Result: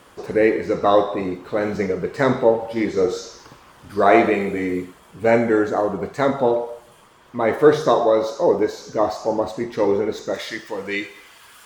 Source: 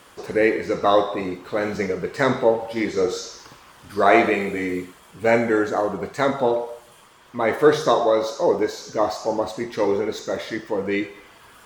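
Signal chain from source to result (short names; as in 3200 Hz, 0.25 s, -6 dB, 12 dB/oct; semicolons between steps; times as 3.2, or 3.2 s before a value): tilt shelf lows +3 dB, about 1200 Hz, from 10.33 s lows -6 dB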